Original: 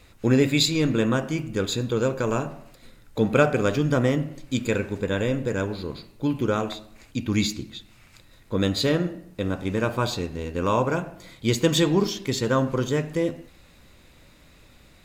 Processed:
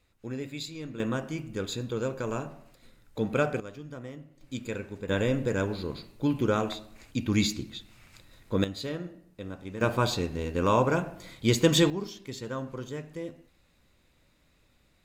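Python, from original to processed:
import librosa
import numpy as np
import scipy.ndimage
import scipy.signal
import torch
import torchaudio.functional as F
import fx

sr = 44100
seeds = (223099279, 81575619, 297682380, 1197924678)

y = fx.gain(x, sr, db=fx.steps((0.0, -17.0), (1.0, -7.5), (3.6, -20.0), (4.41, -10.5), (5.09, -2.0), (8.64, -12.5), (9.81, -1.0), (11.9, -13.0)))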